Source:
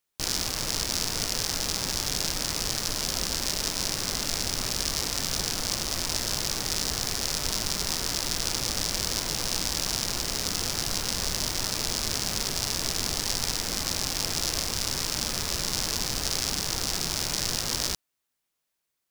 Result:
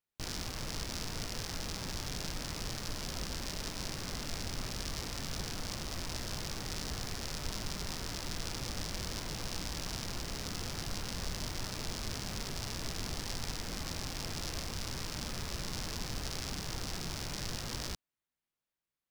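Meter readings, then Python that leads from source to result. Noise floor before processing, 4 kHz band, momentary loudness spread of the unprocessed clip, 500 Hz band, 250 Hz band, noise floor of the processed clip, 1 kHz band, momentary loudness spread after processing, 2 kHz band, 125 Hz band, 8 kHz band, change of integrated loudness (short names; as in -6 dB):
-81 dBFS, -12.5 dB, 1 LU, -8.0 dB, -5.5 dB, under -85 dBFS, -8.5 dB, 1 LU, -9.0 dB, -4.0 dB, -14.5 dB, -12.0 dB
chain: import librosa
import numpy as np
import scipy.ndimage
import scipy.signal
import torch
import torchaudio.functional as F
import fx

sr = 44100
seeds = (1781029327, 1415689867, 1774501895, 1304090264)

y = fx.bass_treble(x, sr, bass_db=5, treble_db=-7)
y = y * librosa.db_to_amplitude(-8.5)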